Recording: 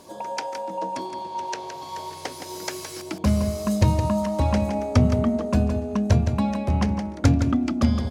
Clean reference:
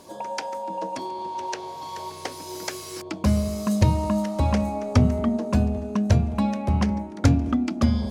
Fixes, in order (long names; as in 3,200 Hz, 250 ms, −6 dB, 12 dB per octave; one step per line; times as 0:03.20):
echo removal 166 ms −8 dB